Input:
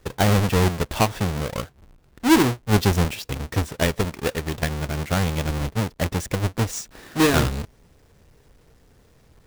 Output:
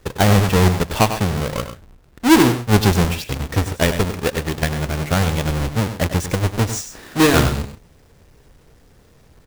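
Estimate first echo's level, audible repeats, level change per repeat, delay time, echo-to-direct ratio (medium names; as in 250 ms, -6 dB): -10.5 dB, 2, no regular repeats, 98 ms, -9.5 dB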